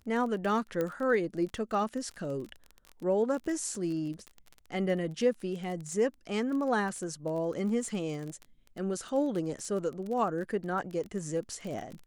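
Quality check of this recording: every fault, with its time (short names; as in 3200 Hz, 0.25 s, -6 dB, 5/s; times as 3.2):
crackle 23/s -36 dBFS
0.81 pop -19 dBFS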